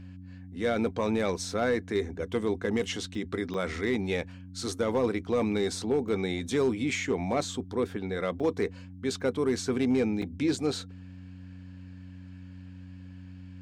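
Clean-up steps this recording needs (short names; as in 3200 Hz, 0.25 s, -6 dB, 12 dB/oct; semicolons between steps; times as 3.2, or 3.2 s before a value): clip repair -19 dBFS; de-hum 92 Hz, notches 3; interpolate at 3.15/3.54/6.08/8.4/9.21/10.22, 3.9 ms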